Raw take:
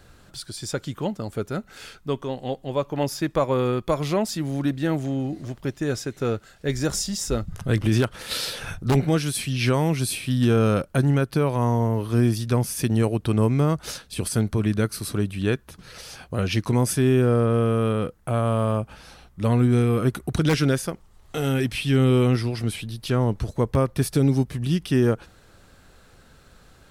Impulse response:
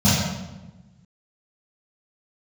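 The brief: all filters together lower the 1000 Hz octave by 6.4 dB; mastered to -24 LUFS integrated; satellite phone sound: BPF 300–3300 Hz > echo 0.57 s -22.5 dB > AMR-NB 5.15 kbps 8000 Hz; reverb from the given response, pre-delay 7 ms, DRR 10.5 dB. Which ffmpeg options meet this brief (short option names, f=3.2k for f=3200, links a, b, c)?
-filter_complex "[0:a]equalizer=f=1k:t=o:g=-8.5,asplit=2[a][b];[1:a]atrim=start_sample=2205,adelay=7[c];[b][c]afir=irnorm=-1:irlink=0,volume=-30dB[d];[a][d]amix=inputs=2:normalize=0,highpass=300,lowpass=3.3k,aecho=1:1:570:0.075,volume=4.5dB" -ar 8000 -c:a libopencore_amrnb -b:a 5150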